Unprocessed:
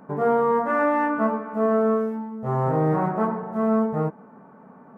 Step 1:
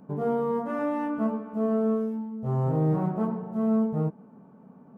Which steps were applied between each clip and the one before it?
EQ curve 180 Hz 0 dB, 1900 Hz -15 dB, 2900 Hz -4 dB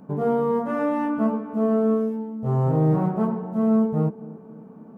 narrowing echo 0.269 s, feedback 67%, band-pass 320 Hz, level -17 dB; gain +4.5 dB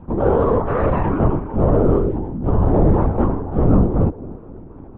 LPC vocoder at 8 kHz whisper; gain +6 dB

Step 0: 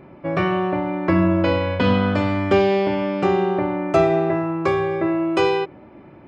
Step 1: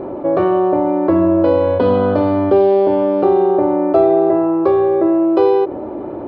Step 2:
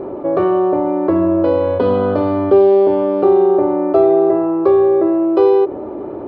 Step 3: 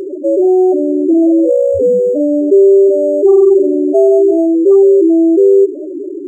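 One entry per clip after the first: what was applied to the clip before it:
EQ curve 110 Hz 0 dB, 150 Hz -8 dB, 300 Hz +8 dB, 460 Hz +11 dB, 800 Hz +7 dB, 1400 Hz -1 dB, 2200 Hz -12 dB, 4200 Hz -3 dB, 6300 Hz -20 dB, 10000 Hz -14 dB; fast leveller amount 50%; gain -5 dB
small resonant body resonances 410/1200 Hz, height 6 dB; gain -2 dB
hard clip -9.5 dBFS, distortion -14 dB; loudest bins only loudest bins 4; decimation joined by straight lines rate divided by 6×; gain +6.5 dB

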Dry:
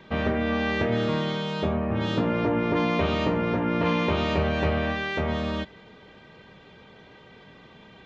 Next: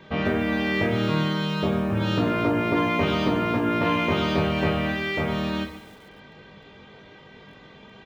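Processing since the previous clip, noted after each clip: on a send: reverse bouncing-ball echo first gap 20 ms, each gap 1.25×, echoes 5; on the sum: lo-fi delay 0.145 s, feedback 55%, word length 7-bit, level -14.5 dB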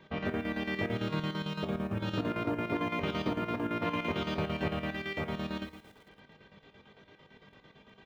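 chopper 8.9 Hz, depth 60%, duty 65%; gain -8.5 dB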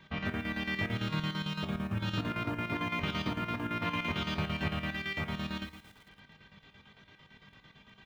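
bell 460 Hz -12 dB 1.7 oct; gain +3.5 dB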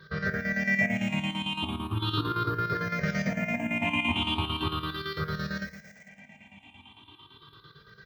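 moving spectral ripple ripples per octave 0.59, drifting +0.38 Hz, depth 23 dB; HPF 70 Hz

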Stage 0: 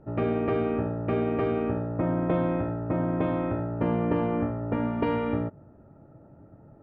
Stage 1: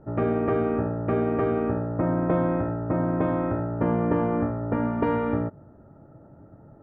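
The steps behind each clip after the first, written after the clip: resonant high shelf 2100 Hz -6.5 dB, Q 1.5; gain +2 dB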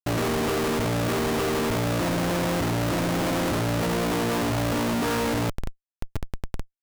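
Schmitt trigger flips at -40.5 dBFS; gain +1 dB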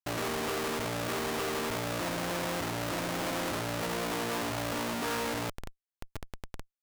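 low shelf 400 Hz -9 dB; gain -4.5 dB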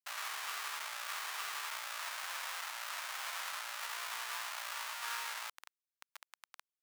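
HPF 1000 Hz 24 dB/oct; gain -4 dB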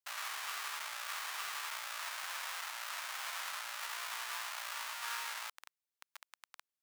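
low shelf 270 Hz -7.5 dB

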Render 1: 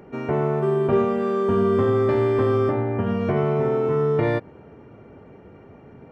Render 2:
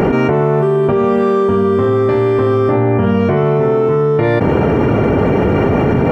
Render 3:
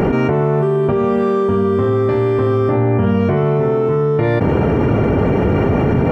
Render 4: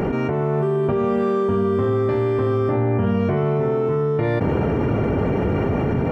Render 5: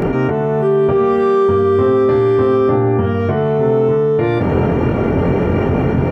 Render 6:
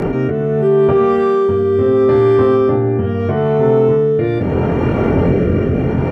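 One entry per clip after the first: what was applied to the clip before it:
fast leveller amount 100%; gain +3.5 dB
low shelf 150 Hz +5.5 dB; gain -3.5 dB
AGC gain up to 4 dB; gain -7 dB
doubler 23 ms -4 dB; gain +4 dB
rotary speaker horn 0.75 Hz; gain +2 dB

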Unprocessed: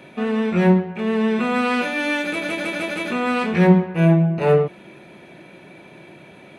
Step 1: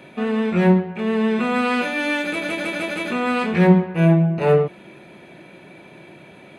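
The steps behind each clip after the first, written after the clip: notch 5700 Hz, Q 13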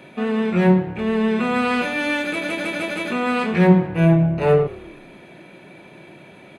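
frequency-shifting echo 0.107 s, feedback 58%, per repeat -36 Hz, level -20.5 dB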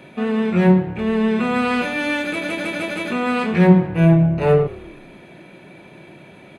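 low shelf 160 Hz +4.5 dB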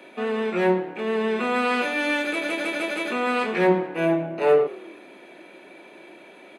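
HPF 280 Hz 24 dB/oct; gain -1.5 dB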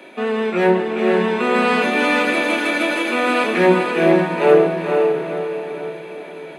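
diffused feedback echo 0.485 s, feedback 47%, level -3.5 dB; gain +5 dB

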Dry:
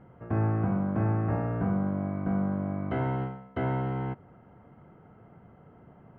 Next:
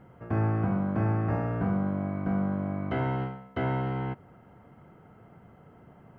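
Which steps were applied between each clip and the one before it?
high shelf 2800 Hz +9.5 dB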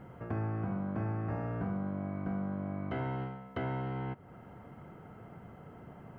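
compressor 2:1, threshold -44 dBFS, peak gain reduction 12 dB; gain +3 dB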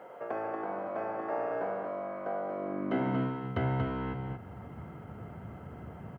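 high-pass sweep 550 Hz -> 71 Hz, 2.4–3.78; echo 0.234 s -5 dB; ending taper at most 150 dB/s; gain +3 dB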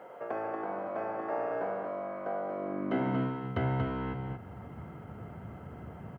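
nothing audible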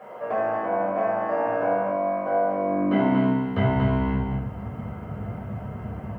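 shoebox room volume 480 m³, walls furnished, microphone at 5.8 m

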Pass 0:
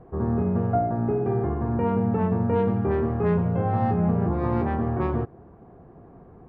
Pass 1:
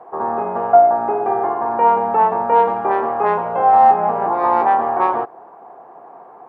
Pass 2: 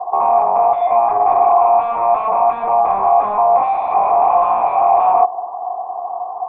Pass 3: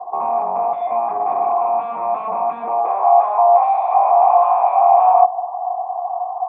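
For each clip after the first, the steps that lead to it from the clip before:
HPF 580 Hz 12 dB/oct; bell 860 Hz +12.5 dB 0.95 oct; gain +8 dB
sine folder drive 17 dB, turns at -1.5 dBFS; vocal tract filter a
high-pass sweep 190 Hz -> 690 Hz, 2.57–3.08; gain -6.5 dB

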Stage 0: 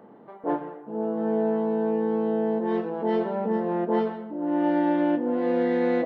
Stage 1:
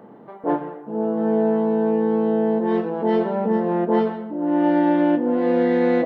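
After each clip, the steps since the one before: bell 120 Hz +3.5 dB 1.4 oct; gain +4.5 dB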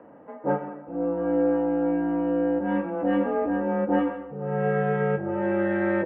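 comb 2.9 ms, depth 50%; mistuned SSB -150 Hz 450–2700 Hz

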